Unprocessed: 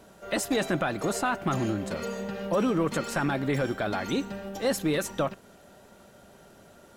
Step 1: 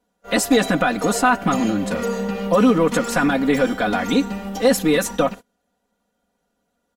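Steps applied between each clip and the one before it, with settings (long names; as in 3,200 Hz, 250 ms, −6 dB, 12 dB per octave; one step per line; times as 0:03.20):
noise gate −40 dBFS, range −28 dB
comb filter 4.1 ms, depth 97%
level +6.5 dB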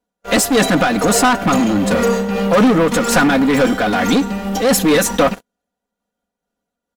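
leveller curve on the samples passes 3
amplitude modulation by smooth noise, depth 55%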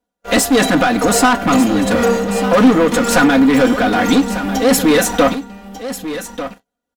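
single-tap delay 1,194 ms −12 dB
on a send at −11 dB: convolution reverb, pre-delay 3 ms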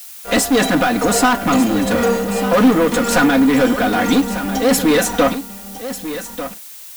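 background noise blue −34 dBFS
level −2 dB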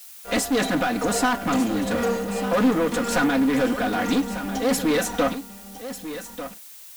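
highs frequency-modulated by the lows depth 0.17 ms
level −7.5 dB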